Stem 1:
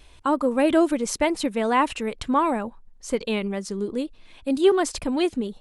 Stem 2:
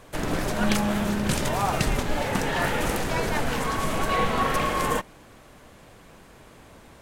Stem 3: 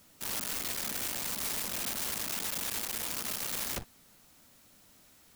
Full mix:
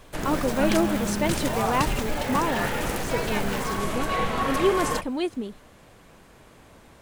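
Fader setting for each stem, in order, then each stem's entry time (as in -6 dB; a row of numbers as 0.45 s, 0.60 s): -4.5 dB, -2.0 dB, -9.0 dB; 0.00 s, 0.00 s, 0.00 s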